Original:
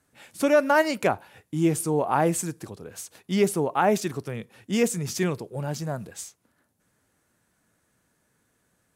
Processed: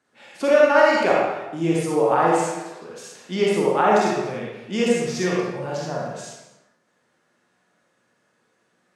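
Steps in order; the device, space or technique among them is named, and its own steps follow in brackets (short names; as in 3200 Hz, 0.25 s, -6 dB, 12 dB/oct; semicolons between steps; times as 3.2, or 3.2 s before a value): 2.38–2.82 HPF 700 Hz; supermarket ceiling speaker (BPF 220–5400 Hz; reverb RT60 0.95 s, pre-delay 39 ms, DRR -4.5 dB); non-linear reverb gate 0.31 s falling, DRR 9 dB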